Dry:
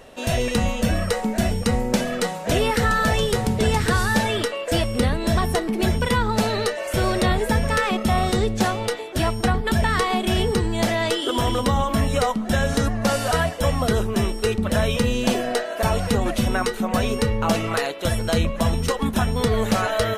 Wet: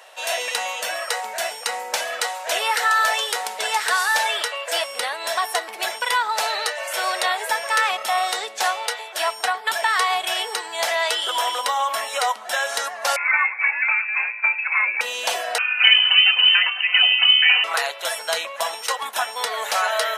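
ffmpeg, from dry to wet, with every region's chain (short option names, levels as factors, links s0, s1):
-filter_complex "[0:a]asettb=1/sr,asplit=3[s0][s1][s2];[s0]atrim=end=13.164[s3];[s1]atrim=start=13.16:end=15.01,asetpts=PTS-STARTPTS,afade=t=in:d=0.004:c=qsin,afade=t=out:st=1.846:d=0.004:c=qsin,highpass=330,lowpass=f=2400:t=q:w=0.5098,lowpass=f=2400:t=q:w=0.6013,lowpass=f=2400:t=q:w=0.9,lowpass=f=2400:t=q:w=2.563,afreqshift=-2800[s4];[s2]atrim=start=15.006[s5];[s3][s4]acrossfade=d=0.004:c1=hsin:c2=qsin[s6];[s6][s5]acrossfade=d=0.004:c1=qsin:c2=hsin,asettb=1/sr,asplit=3[s7][s8][s9];[s7]atrim=end=15.584[s10];[s8]atrim=start=15.58:end=17.64,asetpts=PTS-STARTPTS,afade=t=in:d=0.004:c=qsin,afade=t=out:st=2.056:d=0.004:c=qsin,lowpass=f=2600:t=q:w=0.5098,lowpass=f=2600:t=q:w=0.6013,lowpass=f=2600:t=q:w=0.9,lowpass=f=2600:t=q:w=2.563,afreqshift=-3100,aecho=1:1:4:0.8,atrim=end_sample=90846[s11];[s9]atrim=start=17.636[s12];[s10][s11]acrossfade=d=0.004:c1=hsin:c2=qsin[s13];[s13][s12]acrossfade=d=0.004:c1=qsin:c2=hsin,highpass=f=710:w=0.5412,highpass=f=710:w=1.3066,bandreject=f=1200:w=19,volume=1.58"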